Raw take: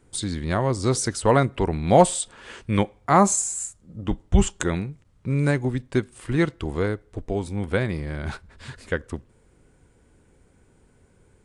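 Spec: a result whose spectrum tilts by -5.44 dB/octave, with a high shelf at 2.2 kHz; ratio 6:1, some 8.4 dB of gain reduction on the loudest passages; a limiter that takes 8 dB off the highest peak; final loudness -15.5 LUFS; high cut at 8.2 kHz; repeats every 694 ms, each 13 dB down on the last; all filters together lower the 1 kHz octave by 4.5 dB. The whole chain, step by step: low-pass 8.2 kHz; peaking EQ 1 kHz -5.5 dB; treble shelf 2.2 kHz -3.5 dB; compression 6:1, threshold -21 dBFS; peak limiter -19.5 dBFS; feedback delay 694 ms, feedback 22%, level -13 dB; trim +16.5 dB

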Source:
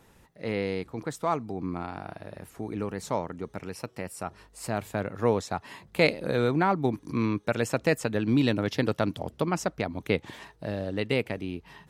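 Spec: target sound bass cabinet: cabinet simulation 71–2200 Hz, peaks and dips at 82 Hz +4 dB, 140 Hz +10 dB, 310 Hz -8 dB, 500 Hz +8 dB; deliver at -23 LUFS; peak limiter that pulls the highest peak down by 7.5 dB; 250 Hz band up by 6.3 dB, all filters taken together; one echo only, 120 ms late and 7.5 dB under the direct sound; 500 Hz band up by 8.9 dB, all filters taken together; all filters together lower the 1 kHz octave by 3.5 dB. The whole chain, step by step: peaking EQ 250 Hz +9 dB; peaking EQ 500 Hz +4 dB; peaking EQ 1 kHz -8 dB; peak limiter -13.5 dBFS; cabinet simulation 71–2200 Hz, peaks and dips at 82 Hz +4 dB, 140 Hz +10 dB, 310 Hz -8 dB, 500 Hz +8 dB; delay 120 ms -7.5 dB; trim +1.5 dB

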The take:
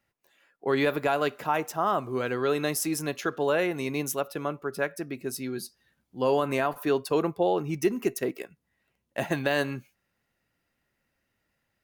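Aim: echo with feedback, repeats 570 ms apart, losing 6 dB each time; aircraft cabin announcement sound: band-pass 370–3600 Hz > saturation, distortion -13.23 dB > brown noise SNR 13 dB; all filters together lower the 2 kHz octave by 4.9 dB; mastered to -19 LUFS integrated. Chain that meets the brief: band-pass 370–3600 Hz; peaking EQ 2 kHz -6 dB; feedback delay 570 ms, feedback 50%, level -6 dB; saturation -23.5 dBFS; brown noise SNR 13 dB; trim +14 dB

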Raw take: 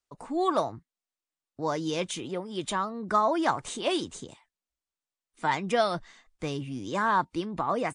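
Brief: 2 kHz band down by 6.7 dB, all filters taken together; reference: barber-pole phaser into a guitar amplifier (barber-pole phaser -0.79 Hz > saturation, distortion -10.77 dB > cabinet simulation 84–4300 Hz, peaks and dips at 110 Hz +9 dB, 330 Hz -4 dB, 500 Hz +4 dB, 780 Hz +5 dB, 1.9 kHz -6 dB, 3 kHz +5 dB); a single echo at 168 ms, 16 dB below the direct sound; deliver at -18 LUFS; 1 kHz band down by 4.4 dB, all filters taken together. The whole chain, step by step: peaking EQ 1 kHz -7.5 dB; peaking EQ 2 kHz -4 dB; delay 168 ms -16 dB; barber-pole phaser -0.79 Hz; saturation -31.5 dBFS; cabinet simulation 84–4300 Hz, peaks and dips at 110 Hz +9 dB, 330 Hz -4 dB, 500 Hz +4 dB, 780 Hz +5 dB, 1.9 kHz -6 dB, 3 kHz +5 dB; trim +20 dB

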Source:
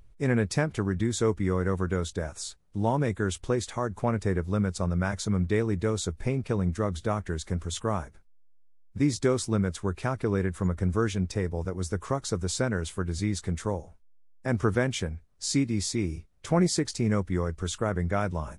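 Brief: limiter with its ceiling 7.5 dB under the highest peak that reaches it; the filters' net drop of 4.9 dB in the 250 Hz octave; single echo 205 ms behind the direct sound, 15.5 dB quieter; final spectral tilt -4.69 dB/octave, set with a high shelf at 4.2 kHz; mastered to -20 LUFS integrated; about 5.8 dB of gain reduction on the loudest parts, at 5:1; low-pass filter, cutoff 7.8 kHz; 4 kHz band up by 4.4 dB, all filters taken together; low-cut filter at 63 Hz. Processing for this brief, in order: high-pass 63 Hz; low-pass 7.8 kHz; peaking EQ 250 Hz -7 dB; peaking EQ 4 kHz +8.5 dB; treble shelf 4.2 kHz -4.5 dB; compression 5:1, threshold -28 dBFS; peak limiter -23.5 dBFS; delay 205 ms -15.5 dB; trim +15.5 dB

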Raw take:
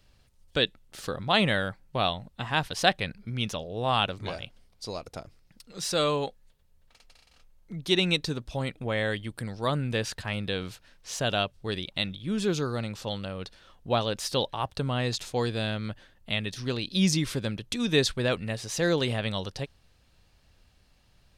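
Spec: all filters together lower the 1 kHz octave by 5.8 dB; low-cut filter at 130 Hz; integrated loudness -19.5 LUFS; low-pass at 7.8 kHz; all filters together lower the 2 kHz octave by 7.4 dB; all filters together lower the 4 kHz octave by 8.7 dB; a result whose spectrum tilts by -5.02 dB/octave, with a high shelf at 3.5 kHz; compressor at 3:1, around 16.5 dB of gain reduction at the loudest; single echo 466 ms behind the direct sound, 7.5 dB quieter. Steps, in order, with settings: high-pass 130 Hz; low-pass 7.8 kHz; peaking EQ 1 kHz -6.5 dB; peaking EQ 2 kHz -4 dB; treble shelf 3.5 kHz -8.5 dB; peaking EQ 4 kHz -3.5 dB; compression 3:1, threshold -44 dBFS; delay 466 ms -7.5 dB; trim +25.5 dB

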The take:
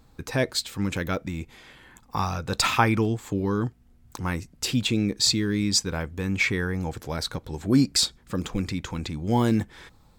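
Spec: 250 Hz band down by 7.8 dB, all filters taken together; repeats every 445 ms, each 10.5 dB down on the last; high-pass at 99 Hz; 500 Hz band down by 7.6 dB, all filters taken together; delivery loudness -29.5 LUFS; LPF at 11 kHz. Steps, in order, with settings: high-pass 99 Hz; low-pass 11 kHz; peaking EQ 250 Hz -8 dB; peaking EQ 500 Hz -7 dB; feedback delay 445 ms, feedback 30%, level -10.5 dB; trim -1.5 dB

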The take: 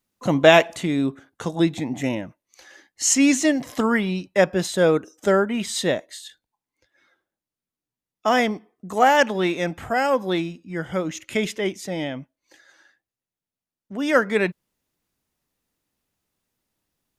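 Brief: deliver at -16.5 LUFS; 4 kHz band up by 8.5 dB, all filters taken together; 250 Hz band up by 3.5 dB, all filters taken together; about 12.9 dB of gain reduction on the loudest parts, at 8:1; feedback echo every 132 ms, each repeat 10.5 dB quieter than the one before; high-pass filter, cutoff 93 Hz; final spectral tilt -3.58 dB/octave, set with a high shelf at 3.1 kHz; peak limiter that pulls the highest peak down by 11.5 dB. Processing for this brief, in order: high-pass 93 Hz; peaking EQ 250 Hz +4.5 dB; treble shelf 3.1 kHz +6 dB; peaking EQ 4 kHz +6.5 dB; compression 8:1, threshold -19 dBFS; peak limiter -19.5 dBFS; feedback delay 132 ms, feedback 30%, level -10.5 dB; trim +12.5 dB

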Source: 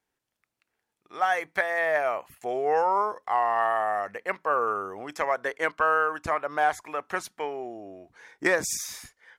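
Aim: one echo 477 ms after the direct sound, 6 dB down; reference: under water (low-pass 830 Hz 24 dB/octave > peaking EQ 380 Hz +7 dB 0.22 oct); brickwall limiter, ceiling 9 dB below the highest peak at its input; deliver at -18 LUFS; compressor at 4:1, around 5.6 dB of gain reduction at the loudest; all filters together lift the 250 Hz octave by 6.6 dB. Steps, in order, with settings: peaking EQ 250 Hz +6 dB; compression 4:1, threshold -24 dBFS; peak limiter -21 dBFS; low-pass 830 Hz 24 dB/octave; peaking EQ 380 Hz +7 dB 0.22 oct; delay 477 ms -6 dB; trim +15 dB

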